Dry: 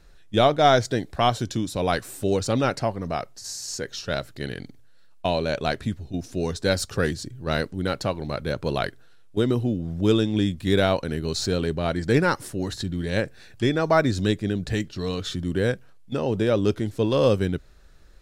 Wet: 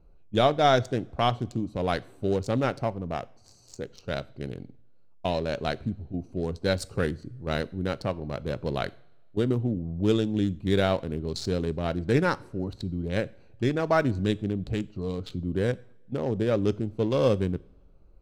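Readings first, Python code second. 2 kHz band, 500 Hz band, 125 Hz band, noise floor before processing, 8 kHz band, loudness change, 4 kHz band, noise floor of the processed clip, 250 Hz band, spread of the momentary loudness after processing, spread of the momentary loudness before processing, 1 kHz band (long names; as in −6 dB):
−5.0 dB, −3.5 dB, −2.5 dB, −48 dBFS, −11.5 dB, −3.5 dB, −6.0 dB, −53 dBFS, −3.0 dB, 11 LU, 11 LU, −4.0 dB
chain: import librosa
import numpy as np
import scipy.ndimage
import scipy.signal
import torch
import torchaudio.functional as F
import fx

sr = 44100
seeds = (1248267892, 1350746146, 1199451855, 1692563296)

y = fx.wiener(x, sr, points=25)
y = fx.rev_double_slope(y, sr, seeds[0], early_s=0.46, late_s=1.5, knee_db=-18, drr_db=17.5)
y = y * librosa.db_to_amplitude(-3.0)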